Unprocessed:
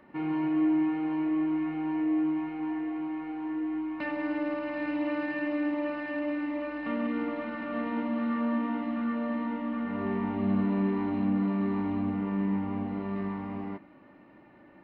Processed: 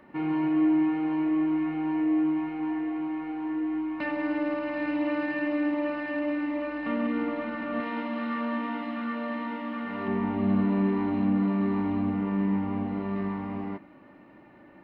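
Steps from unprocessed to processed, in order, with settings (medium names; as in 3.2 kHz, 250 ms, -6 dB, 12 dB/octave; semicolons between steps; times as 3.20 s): 7.80–10.08 s: tilt EQ +2.5 dB/octave; trim +2.5 dB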